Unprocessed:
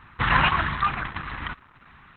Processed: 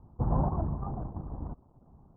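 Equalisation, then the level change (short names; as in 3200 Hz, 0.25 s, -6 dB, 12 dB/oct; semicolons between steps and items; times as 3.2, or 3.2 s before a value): steep low-pass 760 Hz 36 dB/oct; air absorption 290 m; 0.0 dB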